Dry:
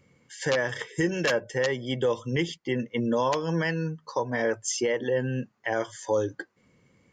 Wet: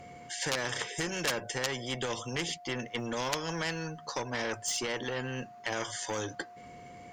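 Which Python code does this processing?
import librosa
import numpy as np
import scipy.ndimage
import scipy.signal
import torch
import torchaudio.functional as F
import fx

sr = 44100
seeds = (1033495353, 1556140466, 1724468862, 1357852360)

y = x + 10.0 ** (-49.0 / 20.0) * np.sin(2.0 * np.pi * 710.0 * np.arange(len(x)) / sr)
y = fx.cheby_harmonics(y, sr, harmonics=(4, 5), levels_db=(-39, -26), full_scale_db=-14.0)
y = fx.spectral_comp(y, sr, ratio=2.0)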